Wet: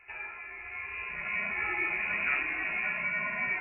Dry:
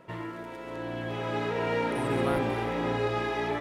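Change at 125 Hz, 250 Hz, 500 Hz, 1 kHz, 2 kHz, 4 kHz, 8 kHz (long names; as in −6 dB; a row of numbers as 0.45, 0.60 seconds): −19.0 dB, −16.5 dB, −18.0 dB, −8.0 dB, +7.5 dB, −10.0 dB, below −30 dB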